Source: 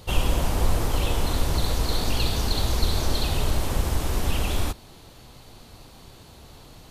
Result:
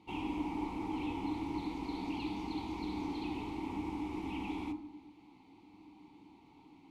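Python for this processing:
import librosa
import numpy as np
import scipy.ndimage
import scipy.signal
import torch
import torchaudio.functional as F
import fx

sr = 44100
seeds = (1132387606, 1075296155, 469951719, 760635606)

y = fx.vowel_filter(x, sr, vowel='u')
y = fx.rev_fdn(y, sr, rt60_s=0.76, lf_ratio=1.45, hf_ratio=0.45, size_ms=31.0, drr_db=6.5)
y = y * 10.0 ** (1.5 / 20.0)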